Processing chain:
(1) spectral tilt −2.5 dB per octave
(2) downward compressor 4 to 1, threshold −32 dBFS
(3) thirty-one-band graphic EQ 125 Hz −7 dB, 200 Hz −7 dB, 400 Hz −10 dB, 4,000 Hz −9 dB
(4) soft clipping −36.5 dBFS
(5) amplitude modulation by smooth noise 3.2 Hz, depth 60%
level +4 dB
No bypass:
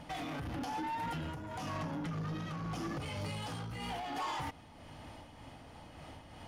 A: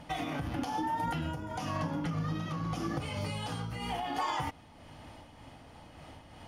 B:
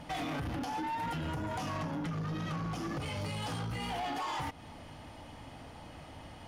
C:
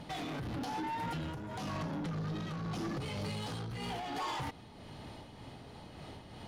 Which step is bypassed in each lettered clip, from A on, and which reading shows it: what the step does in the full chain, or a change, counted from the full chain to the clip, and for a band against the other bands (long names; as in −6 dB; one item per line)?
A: 4, distortion level −11 dB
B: 5, change in momentary loudness spread −1 LU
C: 3, 1 kHz band −2.0 dB